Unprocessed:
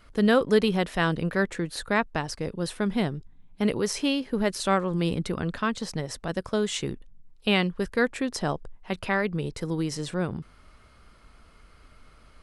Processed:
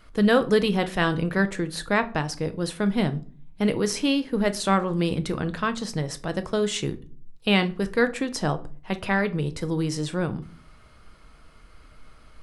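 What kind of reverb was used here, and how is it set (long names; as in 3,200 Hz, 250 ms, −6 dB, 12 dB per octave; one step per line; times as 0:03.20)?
rectangular room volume 280 cubic metres, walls furnished, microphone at 0.58 metres
level +1.5 dB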